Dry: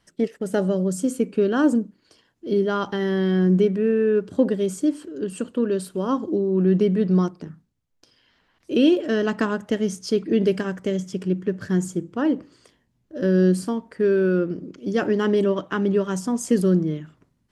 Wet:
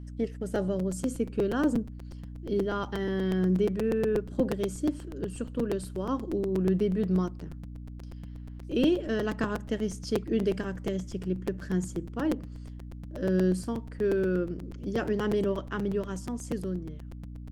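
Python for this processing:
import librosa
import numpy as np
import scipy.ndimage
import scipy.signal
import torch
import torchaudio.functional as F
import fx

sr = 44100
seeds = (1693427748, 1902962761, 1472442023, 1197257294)

y = fx.fade_out_tail(x, sr, length_s=1.94)
y = fx.add_hum(y, sr, base_hz=60, snr_db=11)
y = fx.buffer_crackle(y, sr, first_s=0.55, period_s=0.12, block=256, kind='repeat')
y = y * 10.0 ** (-7.5 / 20.0)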